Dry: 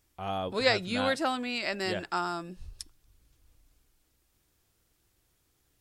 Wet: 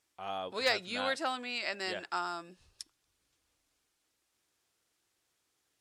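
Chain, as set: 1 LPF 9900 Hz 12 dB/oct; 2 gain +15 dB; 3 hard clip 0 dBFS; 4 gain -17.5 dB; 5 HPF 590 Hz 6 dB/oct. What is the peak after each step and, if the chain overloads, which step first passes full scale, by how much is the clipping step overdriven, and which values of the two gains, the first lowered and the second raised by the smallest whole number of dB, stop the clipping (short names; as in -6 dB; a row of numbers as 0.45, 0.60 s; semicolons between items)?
-9.5, +5.5, 0.0, -17.5, -14.0 dBFS; step 2, 5.5 dB; step 2 +9 dB, step 4 -11.5 dB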